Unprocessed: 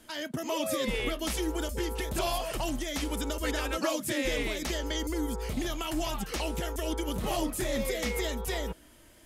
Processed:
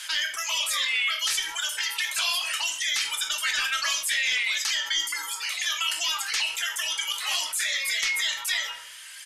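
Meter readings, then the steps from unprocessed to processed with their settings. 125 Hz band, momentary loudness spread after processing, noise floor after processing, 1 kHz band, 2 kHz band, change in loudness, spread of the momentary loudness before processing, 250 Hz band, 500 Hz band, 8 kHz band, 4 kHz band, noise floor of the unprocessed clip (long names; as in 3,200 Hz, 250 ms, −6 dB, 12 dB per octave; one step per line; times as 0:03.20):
below −30 dB, 4 LU, −42 dBFS, +0.5 dB, +11.5 dB, +7.0 dB, 4 LU, below −25 dB, −17.5 dB, +10.0 dB, +12.5 dB, −56 dBFS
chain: Bessel high-pass filter 2,200 Hz, order 4
reverb reduction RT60 1.9 s
sine wavefolder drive 3 dB, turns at −23 dBFS
high-frequency loss of the air 51 metres
rectangular room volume 39 cubic metres, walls mixed, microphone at 0.34 metres
downsampling to 32,000 Hz
envelope flattener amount 50%
level +6.5 dB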